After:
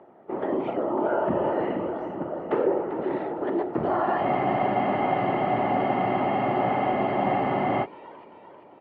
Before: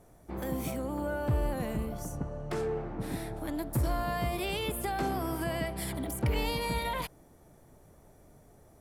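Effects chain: tilt shelf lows +10 dB, about 1200 Hz; whisperiser; speaker cabinet 340–3400 Hz, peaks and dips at 360 Hz +7 dB, 620 Hz +4 dB, 890 Hz +8 dB, 1300 Hz +9 dB, 1900 Hz +8 dB, 2900 Hz +10 dB; on a send: feedback echo 0.393 s, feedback 56%, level -11.5 dB; on the sum: spectral freeze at 4.24, 3.60 s

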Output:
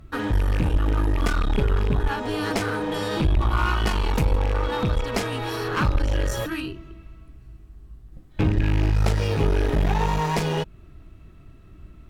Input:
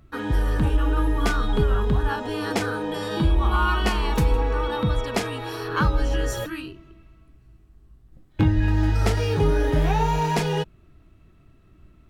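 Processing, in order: rattling part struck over -20 dBFS, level -21 dBFS; low shelf 67 Hz +6 dB; in parallel at +1.5 dB: compressor, threshold -28 dBFS, peak gain reduction 16 dB; on the sum: one-sided clip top -24.5 dBFS; gain -2 dB

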